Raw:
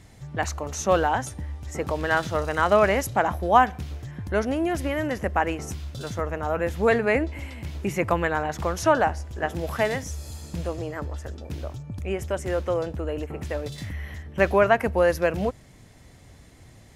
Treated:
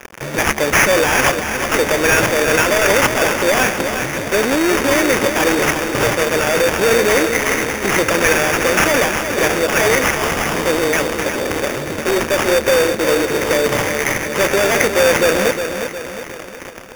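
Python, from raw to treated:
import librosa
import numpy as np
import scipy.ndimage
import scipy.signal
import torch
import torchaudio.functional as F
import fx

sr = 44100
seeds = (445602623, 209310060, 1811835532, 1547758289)

p1 = fx.fuzz(x, sr, gain_db=43.0, gate_db=-45.0)
p2 = scipy.signal.sosfilt(scipy.signal.butter(2, 410.0, 'highpass', fs=sr, output='sos'), p1)
p3 = fx.band_shelf(p2, sr, hz=930.0, db=-11.5, octaves=1.1)
p4 = fx.sample_hold(p3, sr, seeds[0], rate_hz=4100.0, jitter_pct=0)
p5 = p4 + fx.echo_feedback(p4, sr, ms=360, feedback_pct=50, wet_db=-8.0, dry=0)
y = p5 * librosa.db_to_amplitude(4.0)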